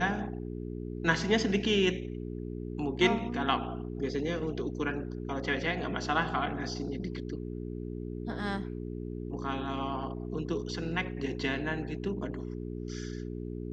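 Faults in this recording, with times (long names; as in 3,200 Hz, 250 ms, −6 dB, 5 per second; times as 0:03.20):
mains hum 60 Hz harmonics 7 −38 dBFS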